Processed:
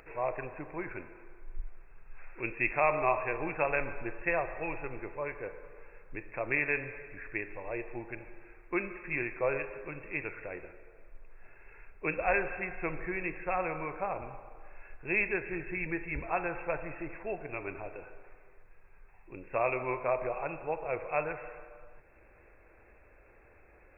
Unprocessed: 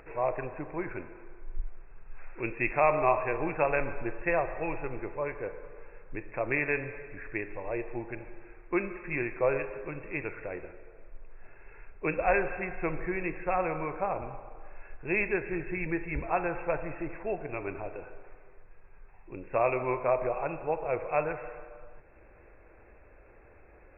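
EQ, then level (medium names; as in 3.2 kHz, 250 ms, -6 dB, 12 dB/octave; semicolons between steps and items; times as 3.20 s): treble shelf 2.2 kHz +9.5 dB; -4.5 dB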